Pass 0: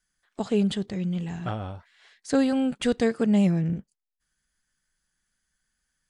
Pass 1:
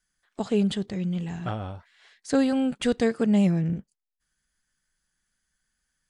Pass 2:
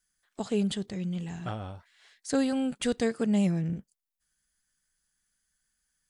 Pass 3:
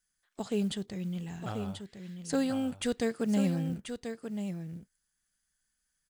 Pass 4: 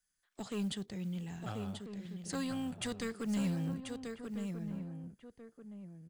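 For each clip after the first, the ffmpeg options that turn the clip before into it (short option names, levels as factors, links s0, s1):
-af anull
-af "highshelf=f=6200:g=10,volume=0.596"
-af "aecho=1:1:1036:0.398,acrusher=bits=8:mode=log:mix=0:aa=0.000001,volume=0.708"
-filter_complex "[0:a]acrossover=split=200|1200[s0][s1][s2];[s1]asoftclip=type=tanh:threshold=0.0158[s3];[s0][s3][s2]amix=inputs=3:normalize=0,asplit=2[s4][s5];[s5]adelay=1341,volume=0.355,highshelf=f=4000:g=-30.2[s6];[s4][s6]amix=inputs=2:normalize=0,volume=0.708"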